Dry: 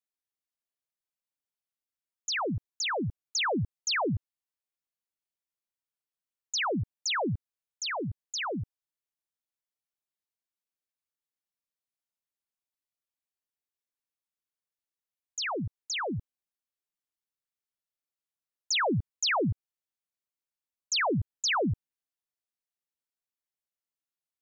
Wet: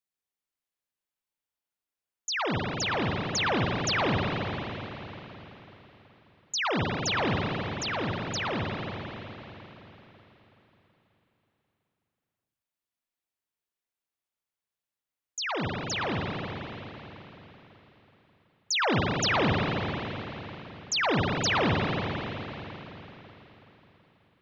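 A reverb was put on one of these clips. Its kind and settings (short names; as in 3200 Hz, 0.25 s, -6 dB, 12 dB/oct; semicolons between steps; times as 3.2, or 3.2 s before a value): spring tank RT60 3.9 s, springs 41/53 ms, chirp 55 ms, DRR -1.5 dB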